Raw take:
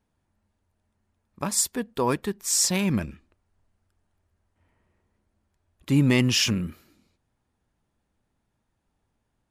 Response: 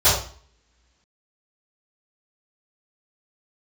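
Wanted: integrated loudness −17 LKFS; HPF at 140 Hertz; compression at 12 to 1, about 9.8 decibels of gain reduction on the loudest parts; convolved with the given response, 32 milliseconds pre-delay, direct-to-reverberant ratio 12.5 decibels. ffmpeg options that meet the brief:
-filter_complex "[0:a]highpass=140,acompressor=threshold=-26dB:ratio=12,asplit=2[link_01][link_02];[1:a]atrim=start_sample=2205,adelay=32[link_03];[link_02][link_03]afir=irnorm=-1:irlink=0,volume=-33dB[link_04];[link_01][link_04]amix=inputs=2:normalize=0,volume=14dB"

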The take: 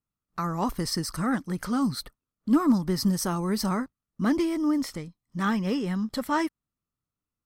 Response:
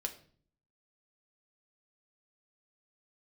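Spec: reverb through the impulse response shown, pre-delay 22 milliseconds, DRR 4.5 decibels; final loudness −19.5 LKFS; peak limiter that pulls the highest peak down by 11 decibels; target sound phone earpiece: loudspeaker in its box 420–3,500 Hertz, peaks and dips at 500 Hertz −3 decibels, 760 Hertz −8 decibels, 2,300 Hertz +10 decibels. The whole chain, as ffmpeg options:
-filter_complex "[0:a]alimiter=limit=-24dB:level=0:latency=1,asplit=2[link_01][link_02];[1:a]atrim=start_sample=2205,adelay=22[link_03];[link_02][link_03]afir=irnorm=-1:irlink=0,volume=-4.5dB[link_04];[link_01][link_04]amix=inputs=2:normalize=0,highpass=420,equalizer=frequency=500:width_type=q:width=4:gain=-3,equalizer=frequency=760:width_type=q:width=4:gain=-8,equalizer=frequency=2300:width_type=q:width=4:gain=10,lowpass=frequency=3500:width=0.5412,lowpass=frequency=3500:width=1.3066,volume=18dB"

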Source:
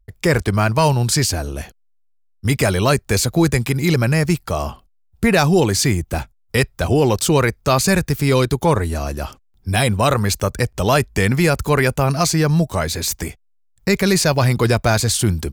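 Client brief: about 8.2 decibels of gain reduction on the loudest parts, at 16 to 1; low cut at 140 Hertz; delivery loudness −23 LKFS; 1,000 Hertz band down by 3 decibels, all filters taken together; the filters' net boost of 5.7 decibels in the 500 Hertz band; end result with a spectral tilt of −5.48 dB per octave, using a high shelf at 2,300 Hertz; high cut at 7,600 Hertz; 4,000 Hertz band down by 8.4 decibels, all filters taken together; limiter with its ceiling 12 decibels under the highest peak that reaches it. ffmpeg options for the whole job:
ffmpeg -i in.wav -af "highpass=140,lowpass=7600,equalizer=frequency=500:width_type=o:gain=9,equalizer=frequency=1000:width_type=o:gain=-7,highshelf=frequency=2300:gain=-4.5,equalizer=frequency=4000:width_type=o:gain=-5.5,acompressor=threshold=-15dB:ratio=16,volume=4dB,alimiter=limit=-13dB:level=0:latency=1" out.wav

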